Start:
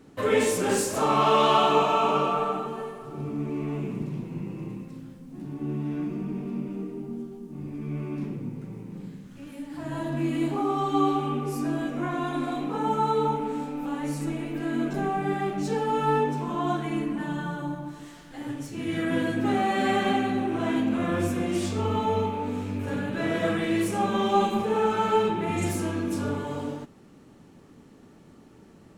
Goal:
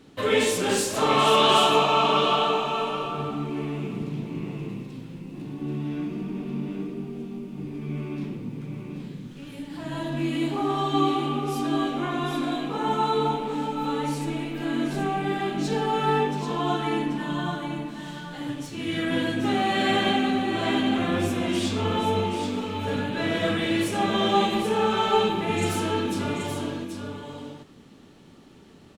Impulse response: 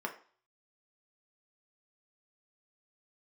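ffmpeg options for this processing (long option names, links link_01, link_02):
-filter_complex "[0:a]equalizer=frequency=3500:width=1.3:gain=9,asplit=2[link_01][link_02];[link_02]aecho=0:1:783:0.473[link_03];[link_01][link_03]amix=inputs=2:normalize=0"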